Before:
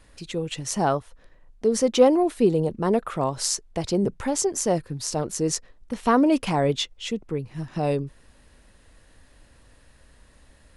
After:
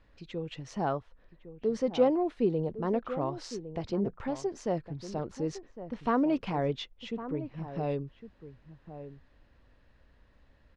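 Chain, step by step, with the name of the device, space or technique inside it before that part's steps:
shout across a valley (high-frequency loss of the air 210 metres; slap from a distant wall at 190 metres, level −12 dB)
level −7.5 dB

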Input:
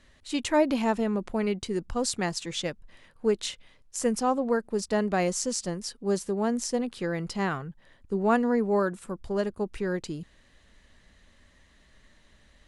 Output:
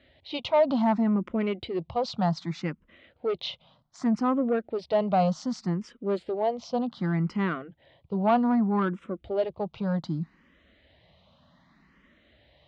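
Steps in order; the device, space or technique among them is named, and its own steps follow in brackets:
barber-pole phaser into a guitar amplifier (frequency shifter mixed with the dry sound +0.65 Hz; soft clipping −22.5 dBFS, distortion −15 dB; loudspeaker in its box 98–3,700 Hz, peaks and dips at 160 Hz +5 dB, 420 Hz −6 dB, 680 Hz +4 dB, 1,700 Hz −8 dB, 2,600 Hz −4 dB)
level +6 dB

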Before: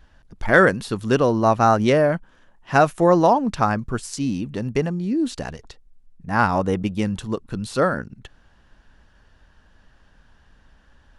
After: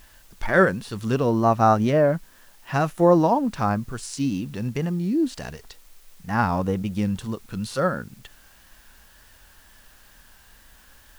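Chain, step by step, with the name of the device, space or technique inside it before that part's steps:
harmonic and percussive parts rebalanced percussive −10 dB
0:01.91–0:02.74: high-shelf EQ 5,300 Hz −10.5 dB
noise-reduction cassette on a plain deck (one half of a high-frequency compander encoder only; tape wow and flutter; white noise bed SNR 32 dB)

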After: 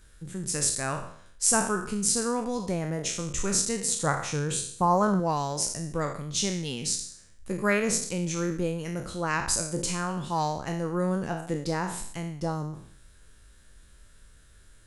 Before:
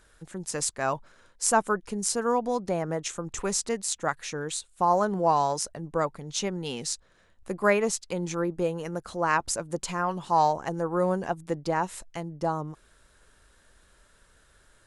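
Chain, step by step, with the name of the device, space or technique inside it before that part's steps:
peak hold with a decay on every bin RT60 0.60 s
smiley-face EQ (low-shelf EQ 200 Hz +6.5 dB; parametric band 770 Hz −8 dB 2 octaves; high-shelf EQ 9,900 Hz +4 dB)
0:03.88–0:05.20: octave-band graphic EQ 125/500/1,000/4,000 Hz +8/+3/+6/−3 dB

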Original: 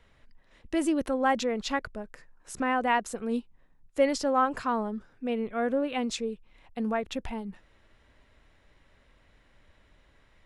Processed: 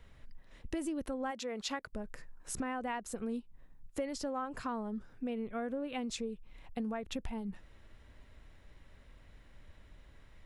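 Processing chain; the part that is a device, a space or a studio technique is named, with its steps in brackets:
0:01.30–0:01.92: high-pass filter 650 Hz → 310 Hz 6 dB per octave
ASMR close-microphone chain (low-shelf EQ 220 Hz +8 dB; downward compressor 5 to 1, threshold −34 dBFS, peak gain reduction 15.5 dB; high-shelf EQ 9,000 Hz +7 dB)
level −1.5 dB

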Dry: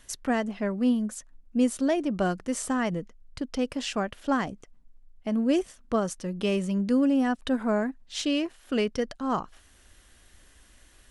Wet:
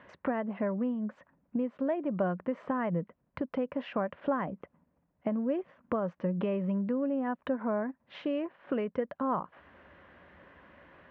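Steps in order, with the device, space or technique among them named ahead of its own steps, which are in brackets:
bass amplifier (downward compressor 6 to 1, threshold −37 dBFS, peak gain reduction 17.5 dB; loudspeaker in its box 87–2,200 Hz, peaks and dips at 110 Hz −8 dB, 170 Hz +6 dB, 560 Hz +8 dB, 1,000 Hz +7 dB)
level +5.5 dB

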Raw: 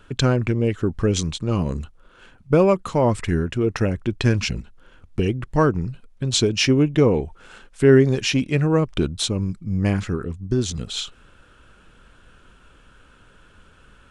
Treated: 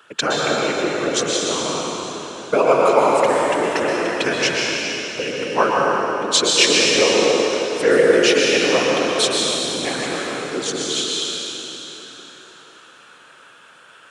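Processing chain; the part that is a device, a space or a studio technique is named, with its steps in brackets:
whispering ghost (random phases in short frames; high-pass filter 580 Hz 12 dB per octave; convolution reverb RT60 3.7 s, pre-delay 110 ms, DRR −3.5 dB)
level +4.5 dB

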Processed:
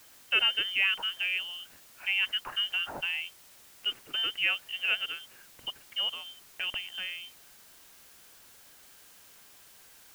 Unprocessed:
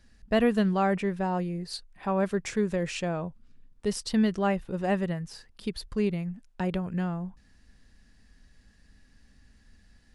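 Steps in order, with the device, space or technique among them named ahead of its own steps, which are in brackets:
scrambled radio voice (band-pass filter 360–3,000 Hz; voice inversion scrambler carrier 3,300 Hz; white noise bed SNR 21 dB)

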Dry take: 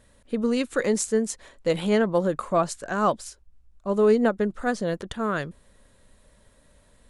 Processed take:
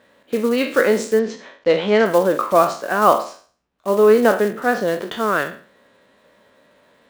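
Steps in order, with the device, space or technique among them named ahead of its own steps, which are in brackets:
peak hold with a decay on every bin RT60 0.43 s
early digital voice recorder (band-pass filter 280–3,400 Hz; one scale factor per block 5 bits)
0:01.19–0:02.06: low-pass filter 5,600 Hz 24 dB per octave
level +7.5 dB

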